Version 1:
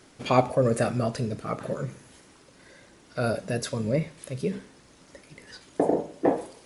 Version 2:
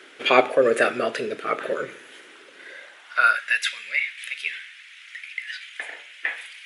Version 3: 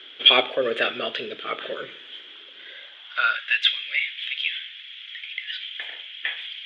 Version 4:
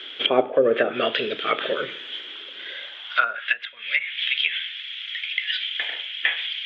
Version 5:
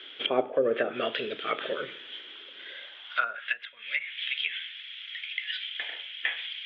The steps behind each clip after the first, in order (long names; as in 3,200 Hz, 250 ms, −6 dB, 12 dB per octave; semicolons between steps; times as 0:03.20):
high-pass filter sweep 390 Hz → 2,200 Hz, 0:02.65–0:03.60; flat-topped bell 2,200 Hz +13.5 dB
low-pass with resonance 3,300 Hz, resonance Q 12; level −6 dB
treble cut that deepens with the level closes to 660 Hz, closed at −18 dBFS; level +6.5 dB
high-frequency loss of the air 84 metres; level −6.5 dB